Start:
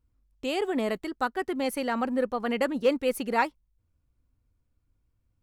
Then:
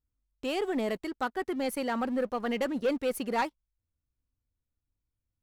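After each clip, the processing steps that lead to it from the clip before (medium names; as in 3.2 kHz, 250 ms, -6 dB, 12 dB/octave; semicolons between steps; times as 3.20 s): waveshaping leveller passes 2; trim -9 dB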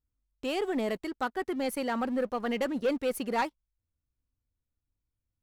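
no audible change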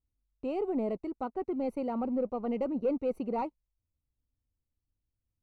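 boxcar filter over 26 samples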